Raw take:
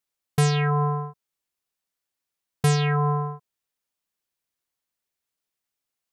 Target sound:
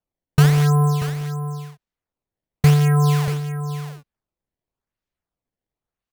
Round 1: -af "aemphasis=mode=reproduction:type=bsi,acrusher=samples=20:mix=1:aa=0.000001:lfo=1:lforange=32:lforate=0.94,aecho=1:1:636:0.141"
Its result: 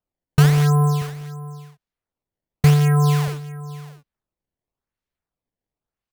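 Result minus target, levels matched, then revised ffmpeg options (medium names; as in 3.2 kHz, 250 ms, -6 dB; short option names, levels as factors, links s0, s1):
echo-to-direct -6.5 dB
-af "aemphasis=mode=reproduction:type=bsi,acrusher=samples=20:mix=1:aa=0.000001:lfo=1:lforange=32:lforate=0.94,aecho=1:1:636:0.299"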